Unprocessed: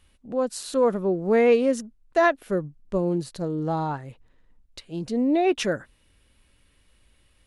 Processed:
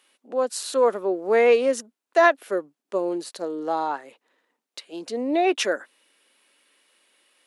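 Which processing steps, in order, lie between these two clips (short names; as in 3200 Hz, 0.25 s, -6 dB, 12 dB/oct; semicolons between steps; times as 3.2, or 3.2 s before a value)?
Bessel high-pass 450 Hz, order 6; gain +4 dB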